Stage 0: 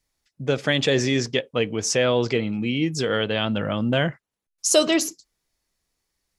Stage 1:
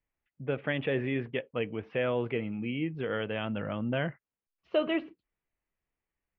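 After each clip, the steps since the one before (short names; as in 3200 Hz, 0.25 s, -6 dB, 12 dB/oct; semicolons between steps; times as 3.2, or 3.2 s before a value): steep low-pass 2900 Hz 48 dB/oct; gain -9 dB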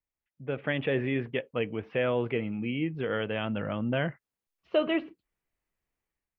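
AGC gain up to 10.5 dB; gain -8.5 dB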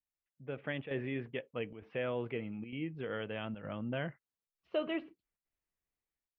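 chopper 1.1 Hz, depth 60%, duty 90%; gain -8.5 dB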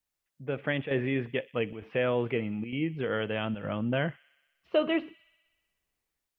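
thin delay 62 ms, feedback 74%, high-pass 2500 Hz, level -19 dB; gain +8.5 dB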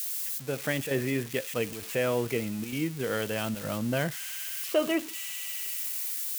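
switching spikes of -27 dBFS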